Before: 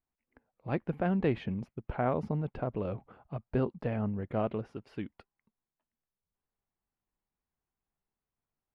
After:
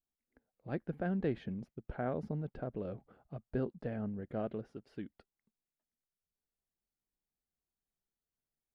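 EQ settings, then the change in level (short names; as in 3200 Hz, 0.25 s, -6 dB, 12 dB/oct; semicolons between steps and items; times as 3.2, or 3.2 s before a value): dynamic EQ 1600 Hz, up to +5 dB, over -60 dBFS, Q 7.5; fifteen-band EQ 100 Hz -5 dB, 1000 Hz -9 dB, 2500 Hz -7 dB; -4.5 dB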